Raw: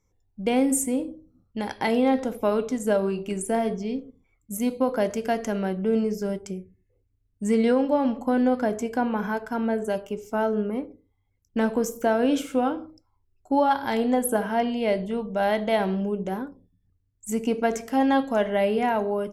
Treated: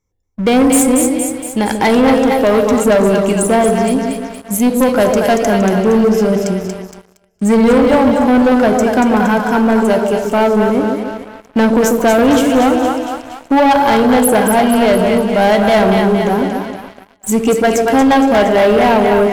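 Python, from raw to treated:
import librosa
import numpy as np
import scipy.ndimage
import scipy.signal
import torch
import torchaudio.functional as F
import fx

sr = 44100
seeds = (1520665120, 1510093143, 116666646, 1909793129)

y = fx.echo_split(x, sr, split_hz=660.0, low_ms=142, high_ms=233, feedback_pct=52, wet_db=-5.0)
y = fx.leveller(y, sr, passes=3)
y = y * librosa.db_to_amplitude(4.0)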